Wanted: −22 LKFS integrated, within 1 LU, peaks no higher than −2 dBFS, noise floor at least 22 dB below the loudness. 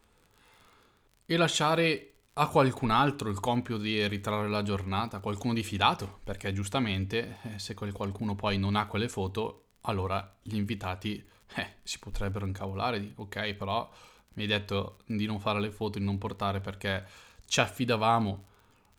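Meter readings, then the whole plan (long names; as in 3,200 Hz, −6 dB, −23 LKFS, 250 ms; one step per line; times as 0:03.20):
crackle rate 39 per second; integrated loudness −31.0 LKFS; sample peak −8.0 dBFS; target loudness −22.0 LKFS
→ click removal
level +9 dB
brickwall limiter −2 dBFS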